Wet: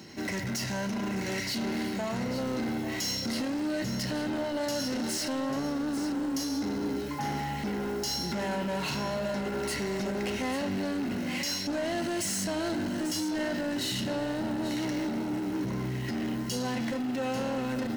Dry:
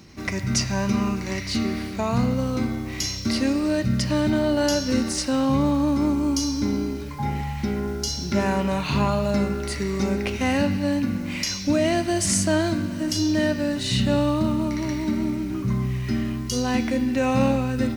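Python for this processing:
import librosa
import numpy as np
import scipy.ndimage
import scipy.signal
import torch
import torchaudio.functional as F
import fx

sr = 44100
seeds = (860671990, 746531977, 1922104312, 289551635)

p1 = fx.highpass(x, sr, hz=180.0, slope=6)
p2 = fx.over_compress(p1, sr, threshold_db=-28.0, ratio=-1.0)
p3 = p1 + (p2 * 10.0 ** (1.0 / 20.0))
p4 = 10.0 ** (-22.0 / 20.0) * np.tanh(p3 / 10.0 ** (-22.0 / 20.0))
p5 = fx.notch_comb(p4, sr, f0_hz=1200.0)
p6 = np.clip(10.0 ** (24.0 / 20.0) * p5, -1.0, 1.0) / 10.0 ** (24.0 / 20.0)
p7 = p6 + fx.echo_single(p6, sr, ms=842, db=-11.0, dry=0)
y = p7 * 10.0 ** (-4.5 / 20.0)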